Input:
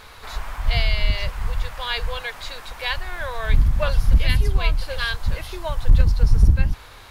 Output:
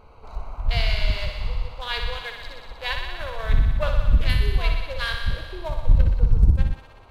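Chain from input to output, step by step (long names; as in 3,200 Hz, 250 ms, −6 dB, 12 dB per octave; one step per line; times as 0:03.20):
adaptive Wiener filter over 25 samples
feedback echo with a high-pass in the loop 61 ms, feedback 80%, high-pass 380 Hz, level −6 dB
level −2 dB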